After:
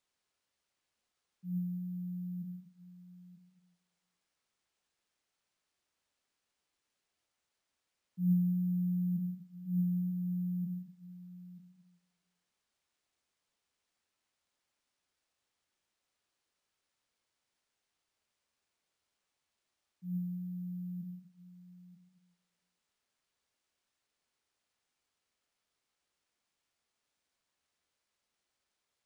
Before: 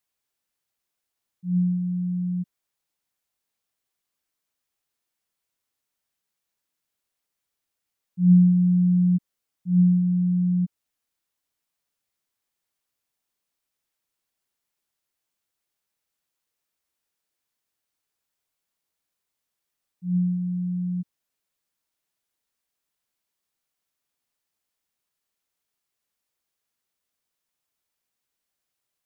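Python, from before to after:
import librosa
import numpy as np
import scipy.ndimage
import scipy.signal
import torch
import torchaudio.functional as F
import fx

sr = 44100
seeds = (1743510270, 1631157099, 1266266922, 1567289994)

y = scipy.signal.sosfilt(scipy.signal.butter(2, 240.0, 'highpass', fs=sr, output='sos'), x)
y = y + 10.0 ** (-15.5 / 20.0) * np.pad(y, (int(934 * sr / 1000.0), 0))[:len(y)]
y = fx.room_shoebox(y, sr, seeds[0], volume_m3=110.0, walls='mixed', distance_m=0.59)
y = np.repeat(y[::3], 3)[:len(y)]
y = y * 10.0 ** (-4.5 / 20.0)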